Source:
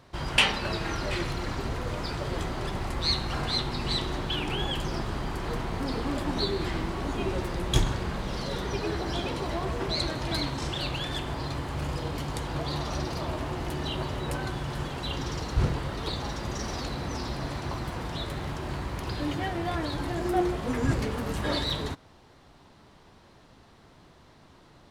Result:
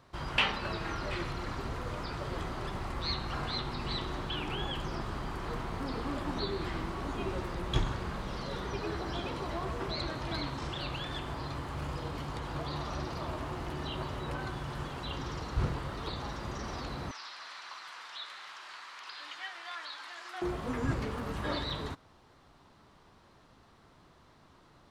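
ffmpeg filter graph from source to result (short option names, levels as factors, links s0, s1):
-filter_complex "[0:a]asettb=1/sr,asplit=3[s0][s1][s2];[s0]atrim=end=17.114[s3];[s1]atrim=start=17.11:end=20.42,asetpts=PTS-STARTPTS,afade=t=in:d=0.004:c=qsin,afade=t=out:st=3.306:d=0.004:c=qsin,asuperpass=centerf=2600:order=4:qfactor=0.61,aemphasis=mode=production:type=50fm[s4];[s2]atrim=start=20.416[s5];[s3][s4]acrossfade=d=0.004:c1=hsin:c2=qsin[s6];[s6][s5]acrossfade=d=0.004:c1=qsin:c2=hsin,acrossover=split=4800[s7][s8];[s8]acompressor=threshold=0.00316:ratio=4:attack=1:release=60[s9];[s7][s9]amix=inputs=2:normalize=0,equalizer=f=1200:t=o:w=0.66:g=4.5,volume=0.501"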